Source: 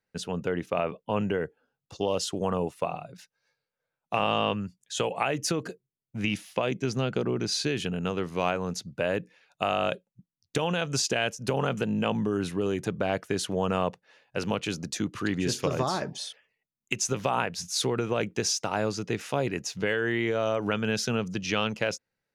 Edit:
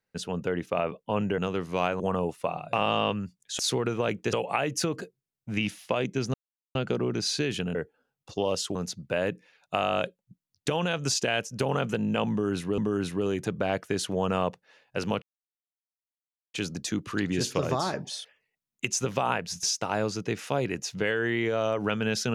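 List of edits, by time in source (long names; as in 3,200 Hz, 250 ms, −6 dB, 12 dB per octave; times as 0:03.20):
0:01.38–0:02.38: swap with 0:08.01–0:08.63
0:03.11–0:04.14: remove
0:07.01: splice in silence 0.41 s
0:12.18–0:12.66: repeat, 2 plays
0:14.62: splice in silence 1.32 s
0:17.71–0:18.45: move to 0:05.00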